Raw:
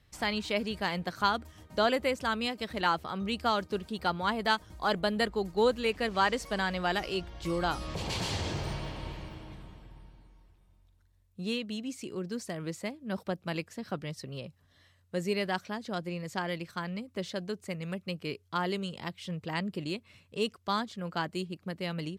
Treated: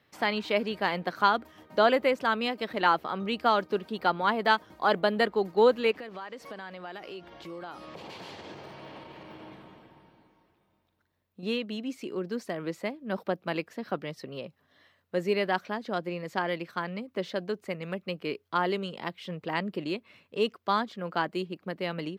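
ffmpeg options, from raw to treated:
-filter_complex "[0:a]asettb=1/sr,asplit=3[s0][s1][s2];[s0]atrim=end=5.914[s3];[s1]atrim=start=5.91:end=11.43,asetpts=PTS-STARTPTS,afade=t=in:d=0.004:c=qsin,afade=t=out:st=5.516:d=0.004:c=qsin,acompressor=threshold=0.00891:ratio=8:attack=3.2:release=140:knee=1:detection=peak[s4];[s2]atrim=start=11.426[s5];[s3][s4]acrossfade=d=0.004:c1=hsin:c2=qsin[s6];[s6][s5]acrossfade=d=0.004:c1=qsin:c2=hsin,highpass=250,equalizer=f=8200:w=0.65:g=-14.5,volume=1.88"

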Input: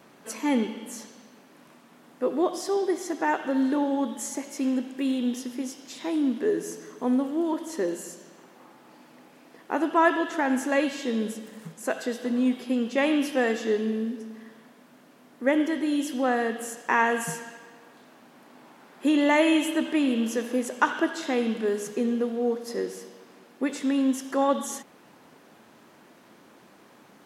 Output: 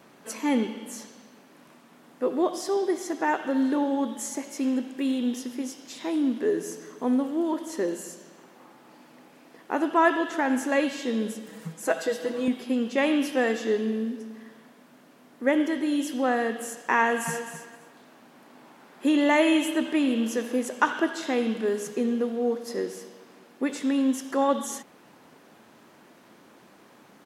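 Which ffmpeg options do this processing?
-filter_complex "[0:a]asettb=1/sr,asplit=3[s0][s1][s2];[s0]atrim=end=11.484[s3];[s1]atrim=start=11.48:end=12.48,asetpts=PTS-STARTPTS,afade=t=in:d=0.004:c=qsin,afade=t=out:st=0.996:d=0.004:c=qsin,aecho=1:1:6.2:0.82,atrim=end_sample=44100[s4];[s2]atrim=start=12.476[s5];[s3][s4]acrossfade=d=0.004:c1=hsin:c2=qsin[s6];[s6][s5]acrossfade=d=0.004:c1=qsin:c2=hsin,asplit=2[s7][s8];[s8]afade=t=in:st=16.99:d=0.01,afade=t=out:st=17.49:d=0.01,aecho=0:1:260|520:0.316228|0.0474342[s9];[s7][s9]amix=inputs=2:normalize=0"

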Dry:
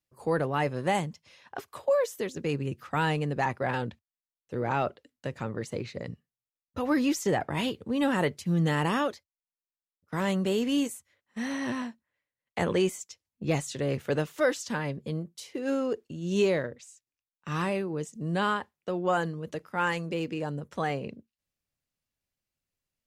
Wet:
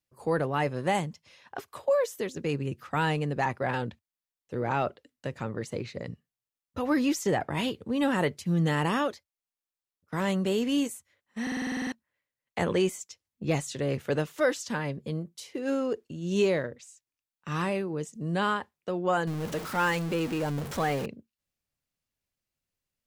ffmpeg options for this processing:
-filter_complex "[0:a]asettb=1/sr,asplit=3[s0][s1][s2];[s0]atrim=end=19.274[s3];[s1]atrim=start=19.27:end=21.06,asetpts=PTS-STARTPTS,afade=t=in:d=0.004:c=qsin,afade=t=out:st=1.786:d=0.004:c=qsin,aeval=exprs='val(0)+0.5*0.0237*sgn(val(0))':c=same[s4];[s2]atrim=start=21.056[s5];[s3][s4]acrossfade=d=0.004:c1=hsin:c2=qsin[s6];[s6][s5]acrossfade=d=0.004:c1=qsin:c2=hsin,asplit=11[s7][s8][s9][s10][s11][s12][s13][s14][s15][s16][s17];[s7]atrim=end=11.472[s18];[s8]atrim=start=11.418:end=11.472[s19];[s9]atrim=start=11.418:end=11.472[s20];[s10]atrim=start=11.418:end=11.472[s21];[s11]atrim=start=11.418:end=11.472[s22];[s12]atrim=start=11.418:end=11.472[s23];[s13]atrim=start=11.418:end=11.472[s24];[s14]atrim=start=11.418:end=11.472[s25];[s15]atrim=start=11.418:end=11.472[s26];[s16]atrim=start=11.418:end=11.472[s27];[s17]atrim=start=11.918[s28];[s18][s19]acrossfade=d=0.004:c1=hsin:c2=hsin[s29];[s29][s20]acrossfade=d=0.004:c1=hsin:c2=hsin[s30];[s30][s21]acrossfade=d=0.004:c1=hsin:c2=hsin[s31];[s31][s22]acrossfade=d=0.004:c1=hsin:c2=hsin[s32];[s32][s23]acrossfade=d=0.004:c1=hsin:c2=hsin[s33];[s33][s24]acrossfade=d=0.004:c1=hsin:c2=hsin[s34];[s34][s25]acrossfade=d=0.004:c1=hsin:c2=hsin[s35];[s35][s26]acrossfade=d=0.004:c1=hsin:c2=hsin[s36];[s36][s27]acrossfade=d=0.004:c1=hsin:c2=hsin[s37];[s37][s28]acrossfade=d=0.004:c1=hsin:c2=hsin"

